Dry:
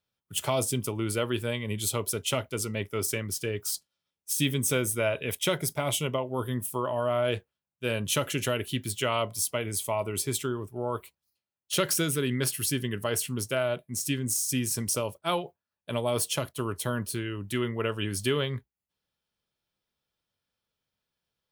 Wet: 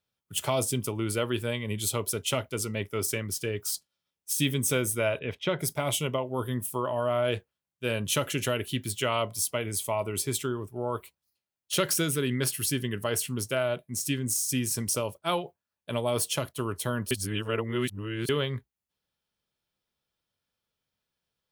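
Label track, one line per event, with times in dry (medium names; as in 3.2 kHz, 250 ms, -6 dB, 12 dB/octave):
5.190000	5.590000	distance through air 250 m
17.110000	18.290000	reverse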